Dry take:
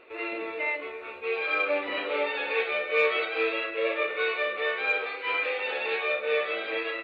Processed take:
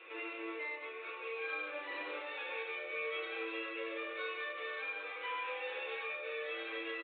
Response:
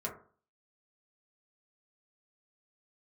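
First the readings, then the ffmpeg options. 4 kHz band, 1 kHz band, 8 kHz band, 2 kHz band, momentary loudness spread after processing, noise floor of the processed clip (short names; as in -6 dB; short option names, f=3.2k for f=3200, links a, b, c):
-11.0 dB, -10.5 dB, n/a, -11.5 dB, 3 LU, -46 dBFS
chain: -filter_complex "[0:a]acrossover=split=170[a][b];[b]acompressor=threshold=-43dB:ratio=3[c];[a][c]amix=inputs=2:normalize=0,equalizer=f=340:t=o:w=1.7:g=2.5,asplit=2[d][e];[e]aecho=0:1:145:0.316[f];[d][f]amix=inputs=2:normalize=0[g];[1:a]atrim=start_sample=2205,asetrate=33957,aresample=44100[h];[g][h]afir=irnorm=-1:irlink=0,acrossover=split=1700[i][j];[j]aeval=exprs='clip(val(0),-1,0.00188)':c=same[k];[i][k]amix=inputs=2:normalize=0,aderivative,aresample=8000,aresample=44100,volume=12.5dB"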